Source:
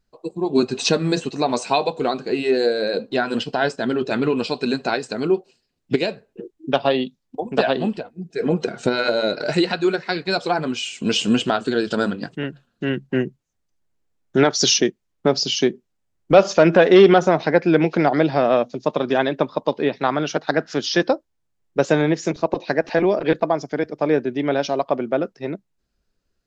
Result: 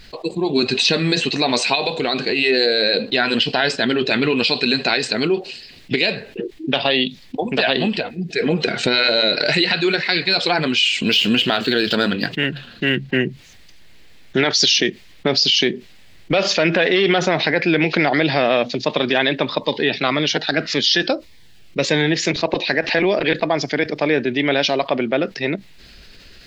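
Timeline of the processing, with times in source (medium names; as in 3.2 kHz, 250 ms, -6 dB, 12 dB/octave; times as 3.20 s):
1.75–2.42 s: compression, threshold -21 dBFS
11.03–13.18 s: median filter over 5 samples
19.58–22.15 s: Shepard-style phaser falling 1.8 Hz
whole clip: high-order bell 2.9 kHz +12 dB; peak limiter -5.5 dBFS; level flattener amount 50%; trim -1.5 dB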